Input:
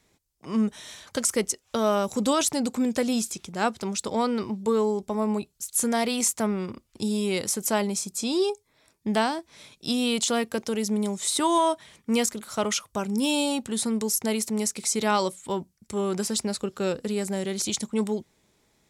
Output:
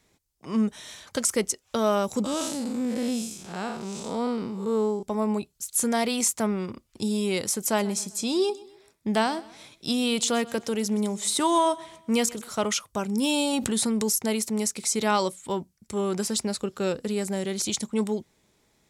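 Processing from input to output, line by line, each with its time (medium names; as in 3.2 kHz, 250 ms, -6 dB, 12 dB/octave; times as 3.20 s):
2.24–5.03 s: spectral blur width 173 ms
7.61–12.53 s: feedback delay 128 ms, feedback 41%, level -20 dB
13.53–14.13 s: level flattener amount 70%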